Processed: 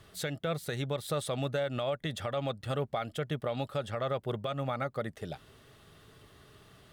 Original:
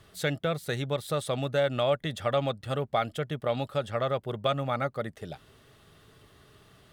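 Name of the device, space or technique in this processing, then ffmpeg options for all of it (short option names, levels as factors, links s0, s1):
stacked limiters: -af "alimiter=limit=0.126:level=0:latency=1:release=313,alimiter=limit=0.0708:level=0:latency=1:release=108"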